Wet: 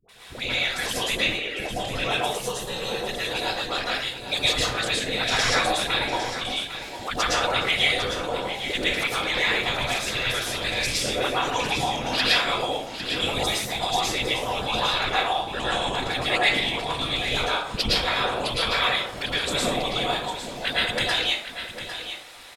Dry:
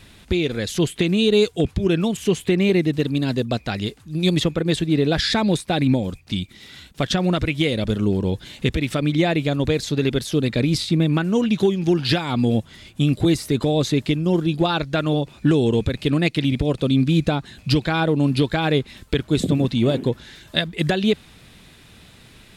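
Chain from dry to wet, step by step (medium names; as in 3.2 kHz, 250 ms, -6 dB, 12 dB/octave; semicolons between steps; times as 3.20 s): 1.16–1.60 s: formants replaced by sine waves; spectral gate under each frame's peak -10 dB weak; peaking EQ 330 Hz -14.5 dB 0.83 oct; small resonant body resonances 460/780 Hz, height 7 dB; phase dispersion highs, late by 91 ms, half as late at 560 Hz; whisper effect; 2.23–3.01 s: static phaser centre 440 Hz, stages 8; delay 803 ms -10.5 dB; plate-style reverb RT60 0.54 s, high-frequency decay 0.6×, pre-delay 100 ms, DRR -6 dB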